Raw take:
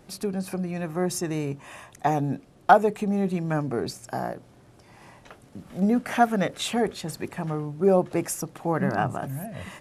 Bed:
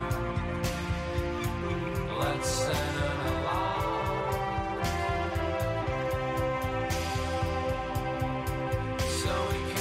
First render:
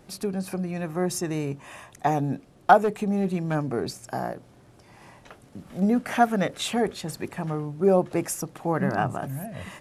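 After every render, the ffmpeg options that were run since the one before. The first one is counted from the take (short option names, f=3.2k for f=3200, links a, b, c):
-filter_complex "[0:a]asettb=1/sr,asplit=3[a][b][c];[a]atrim=end=2.834[d];[b]atrim=start=2.83:end=3.55,asetpts=PTS-STARTPTS,afade=t=in:d=0.004:c=qsin,afade=t=out:st=0.716:d=0.004:c=qsin,asoftclip=type=hard:threshold=-18dB[e];[c]atrim=start=3.546[f];[d][e]acrossfade=d=0.004:c1=hsin:c2=qsin[g];[g][f]acrossfade=d=0.004:c1=qsin:c2=hsin"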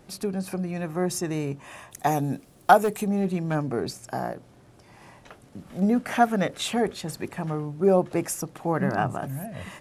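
-filter_complex "[0:a]asettb=1/sr,asplit=3[a][b][c];[a]atrim=end=1.914[d];[b]atrim=start=1.91:end=3.07,asetpts=PTS-STARTPTS,afade=t=in:d=0.004:c=qsin,afade=t=out:st=1.156:d=0.004:c=qsin,aemphasis=mode=production:type=50fm[e];[c]atrim=start=3.066[f];[d][e]acrossfade=d=0.004:c1=hsin:c2=qsin[g];[g][f]acrossfade=d=0.004:c1=qsin:c2=hsin"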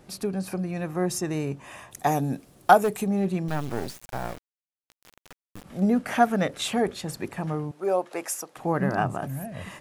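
-filter_complex "[0:a]asettb=1/sr,asplit=3[a][b][c];[a]atrim=end=3.484[d];[b]atrim=start=3.48:end=5.64,asetpts=PTS-STARTPTS,afade=t=in:d=0.004:c=qsin,afade=t=out:st=2.156:d=0.004:c=qsin,acrusher=bits=4:dc=4:mix=0:aa=0.000001[e];[c]atrim=start=5.636[f];[d][e]acrossfade=d=0.004:c1=hsin:c2=qsin[g];[g][f]acrossfade=d=0.004:c1=qsin:c2=hsin,asettb=1/sr,asplit=3[h][i][j];[h]atrim=end=7.714[k];[i]atrim=start=7.71:end=8.57,asetpts=PTS-STARTPTS,afade=t=in:d=0.004:c=qsin,afade=t=out:st=0.856:d=0.004:c=qsin,highpass=540[l];[j]atrim=start=8.566[m];[k][l]acrossfade=d=0.004:c1=hsin:c2=qsin[n];[n][m]acrossfade=d=0.004:c1=qsin:c2=hsin"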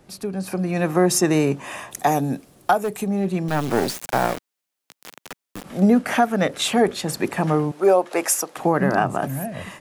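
-filter_complex "[0:a]acrossover=split=160[a][b];[b]dynaudnorm=f=270:g=5:m=14dB[c];[a][c]amix=inputs=2:normalize=0,alimiter=limit=-7dB:level=0:latency=1:release=275"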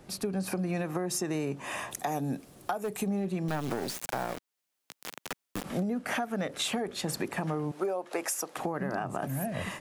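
-af "alimiter=limit=-17dB:level=0:latency=1:release=486,acompressor=threshold=-28dB:ratio=6"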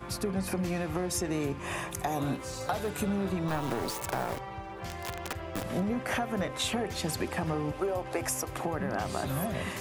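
-filter_complex "[1:a]volume=-9.5dB[a];[0:a][a]amix=inputs=2:normalize=0"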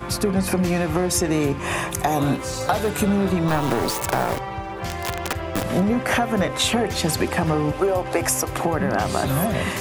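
-af "volume=10.5dB"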